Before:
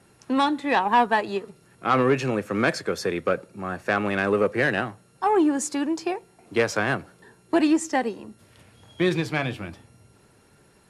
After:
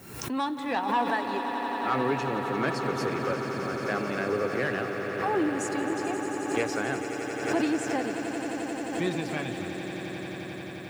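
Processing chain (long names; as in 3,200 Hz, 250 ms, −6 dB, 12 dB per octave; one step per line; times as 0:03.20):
spectral magnitudes quantised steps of 15 dB
background noise violet −63 dBFS
on a send: echo that builds up and dies away 88 ms, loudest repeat 8, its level −11.5 dB
on the sum: background raised ahead of every attack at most 63 dB per second
level −7.5 dB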